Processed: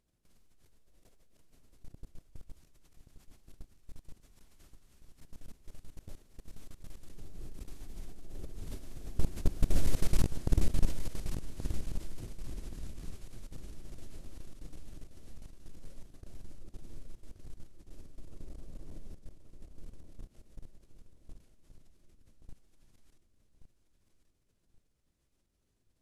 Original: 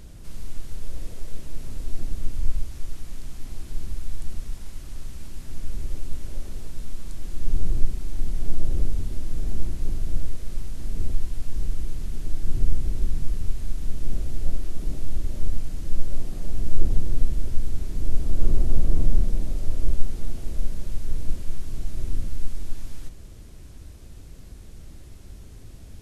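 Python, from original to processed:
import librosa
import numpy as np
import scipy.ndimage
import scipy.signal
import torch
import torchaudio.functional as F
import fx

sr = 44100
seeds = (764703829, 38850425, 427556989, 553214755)

p1 = fx.doppler_pass(x, sr, speed_mps=14, closest_m=5.0, pass_at_s=10.1)
p2 = fx.level_steps(p1, sr, step_db=21)
p3 = fx.low_shelf(p2, sr, hz=140.0, db=-10.5)
p4 = p3 + fx.echo_feedback(p3, sr, ms=1127, feedback_pct=32, wet_db=-8.5, dry=0)
y = F.gain(torch.from_numpy(p4), 14.0).numpy()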